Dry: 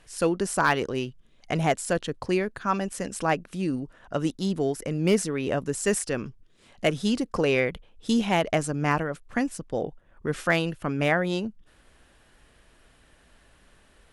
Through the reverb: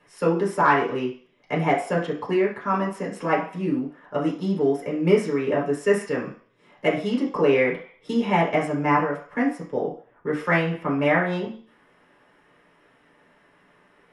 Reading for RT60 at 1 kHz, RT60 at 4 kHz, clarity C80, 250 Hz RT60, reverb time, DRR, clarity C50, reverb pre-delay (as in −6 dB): 0.55 s, 0.60 s, 12.0 dB, 0.30 s, 0.50 s, −6.0 dB, 7.5 dB, 3 ms